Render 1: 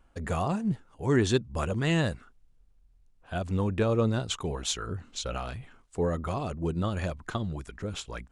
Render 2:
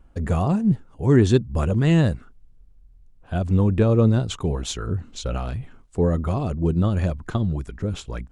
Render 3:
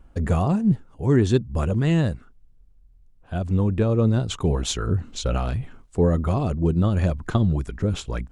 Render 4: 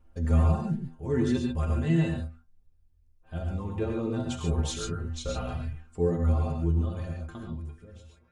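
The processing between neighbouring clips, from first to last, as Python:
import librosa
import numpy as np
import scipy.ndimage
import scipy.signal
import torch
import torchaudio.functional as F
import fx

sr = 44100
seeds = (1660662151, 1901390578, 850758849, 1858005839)

y1 = fx.low_shelf(x, sr, hz=490.0, db=11.0)
y2 = fx.rider(y1, sr, range_db=3, speed_s=0.5)
y3 = fx.fade_out_tail(y2, sr, length_s=2.68)
y3 = fx.stiff_resonator(y3, sr, f0_hz=79.0, decay_s=0.31, stiffness=0.008)
y3 = fx.rev_gated(y3, sr, seeds[0], gate_ms=160, shape='rising', drr_db=1.0)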